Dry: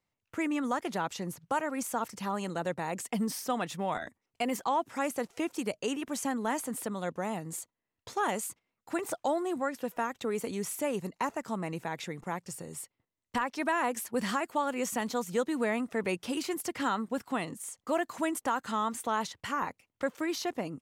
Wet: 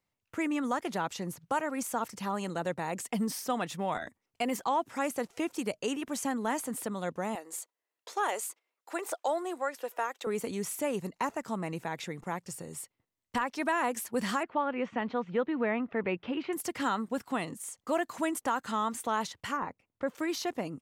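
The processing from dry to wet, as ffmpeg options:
-filter_complex "[0:a]asettb=1/sr,asplit=3[a][b][c];[a]atrim=end=7.354[d];[b]atrim=start=7.35:end=10.27,asetpts=PTS-STARTPTS,afade=t=in:d=0.004:c=qsin,afade=t=out:st=2.916:d=0.004:c=qsin,highpass=f=380:w=0.5412,highpass=f=380:w=1.3066[e];[c]atrim=start=10.266[f];[d][e]acrossfade=d=0.004:c1=hsin:c2=qsin[g];[g][f]acrossfade=d=0.004:c1=qsin:c2=hsin,asettb=1/sr,asplit=3[h][i][j];[h]atrim=end=14.434[k];[i]atrim=start=14.43:end=16.53,asetpts=PTS-STARTPTS,afade=t=in:d=0.004:c=qsin,afade=t=out:st=2.096:d=0.004:c=qsin,lowpass=f=2.9k:w=0.5412,lowpass=f=2.9k:w=1.3066[l];[j]atrim=start=16.526[m];[k][l]acrossfade=d=0.004:c1=hsin:c2=qsin[n];[n][m]acrossfade=d=0.004:c1=qsin:c2=hsin,asplit=3[o][p][q];[o]afade=t=out:st=19.56:d=0.02[r];[p]lowpass=f=1.2k:p=1,afade=t=in:st=19.56:d=0.02,afade=t=out:st=20.07:d=0.02[s];[q]afade=t=in:st=20.07:d=0.02[t];[r][s][t]amix=inputs=3:normalize=0"

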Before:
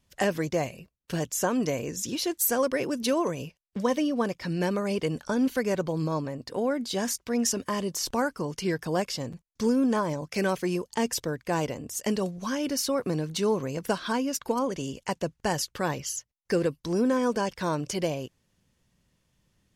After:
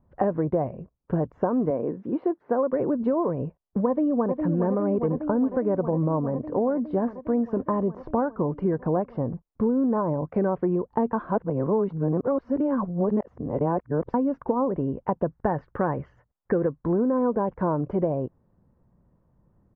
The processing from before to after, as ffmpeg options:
-filter_complex "[0:a]asettb=1/sr,asplit=3[a][b][c];[a]atrim=end=1.704[d];[b]atrim=start=1.7:end=2.73,asetpts=PTS-STARTPTS,afade=t=in:d=0.004:c=qsin,afade=t=out:st=1.026:d=0.004:c=qsin,highpass=210,lowpass=3.2k[e];[c]atrim=start=2.726[f];[d][e]acrossfade=d=0.004:c1=hsin:c2=qsin[g];[g][f]acrossfade=d=0.004:c1=qsin:c2=hsin,asplit=2[h][i];[i]afade=t=in:st=3.87:d=0.01,afade=t=out:st=4.41:d=0.01,aecho=0:1:410|820|1230|1640|2050|2460|2870|3280|3690|4100|4510|4920:0.375837|0.30067|0.240536|0.192429|0.153943|0.123154|0.0985235|0.0788188|0.0630551|0.050444|0.0403552|0.0322842[j];[h][j]amix=inputs=2:normalize=0,asettb=1/sr,asplit=3[k][l][m];[k]atrim=end=15.244[n];[l]atrim=start=15.24:end=17.04,asetpts=PTS-STARTPTS,afade=t=in:d=0.004:c=qsin,afade=t=out:st=1.796:d=0.004:c=qsin,equalizer=f=1.8k:w=1.5:g=8[o];[m]atrim=start=17.036[p];[n][o]acrossfade=d=0.004:c1=hsin:c2=qsin[q];[q][p]acrossfade=d=0.004:c1=qsin:c2=hsin,asplit=3[r][s][t];[r]atrim=end=11.132[u];[s]atrim=start=11.128:end=14.142,asetpts=PTS-STARTPTS,areverse[v];[t]atrim=start=14.138[w];[u][v]acrossfade=d=0.004:c1=hsin:c2=hsin[x];[x][w]acrossfade=d=0.004:c1=hsin:c2=hsin,lowpass=f=1.1k:w=0.5412,lowpass=f=1.1k:w=1.3066,acompressor=threshold=-28dB:ratio=6,volume=8dB"

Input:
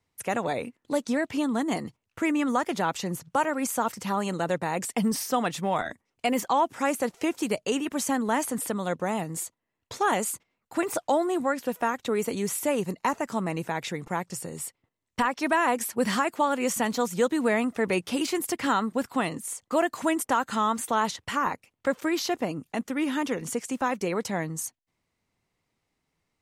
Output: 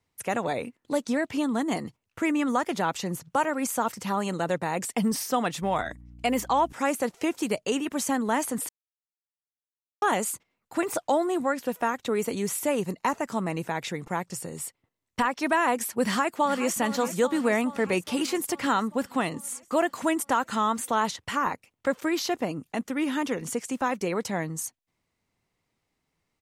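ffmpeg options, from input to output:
-filter_complex "[0:a]asettb=1/sr,asplit=3[a][b][c];[a]atrim=end=5.624[d];[b]atrim=start=5.62:end=6.73,asetpts=PTS-STARTPTS,afade=t=in:d=0.004:c=qsin,afade=t=out:st=1.106:d=0.004:c=qsin,aeval=exprs='val(0)+0.00501*(sin(2*PI*60*n/s)+sin(2*PI*2*60*n/s)/2+sin(2*PI*3*60*n/s)/3+sin(2*PI*4*60*n/s)/4+sin(2*PI*5*60*n/s)/5)':c=same[e];[c]atrim=start=6.726[f];[d][e]acrossfade=d=0.004:c1=hsin:c2=qsin[g];[g][f]acrossfade=d=0.004:c1=qsin:c2=hsin,asplit=2[h][i];[i]afade=t=in:st=16.03:d=0.01,afade=t=out:st=16.77:d=0.01,aecho=0:1:420|840|1260|1680|2100|2520|2940|3360|3780|4200:0.251189|0.175832|0.123082|0.0861577|0.0603104|0.0422173|0.0295521|0.0206865|0.0144805|0.0101364[j];[h][j]amix=inputs=2:normalize=0,asplit=3[k][l][m];[k]atrim=end=8.69,asetpts=PTS-STARTPTS,afade=t=out:st=8.686:d=0.004:c=hsin[n];[l]atrim=start=8.69:end=10.02,asetpts=PTS-STARTPTS,volume=0[o];[m]atrim=start=10.02,asetpts=PTS-STARTPTS,afade=t=in:d=0.004:c=hsin[p];[n][o][p]concat=n=3:v=0:a=1"

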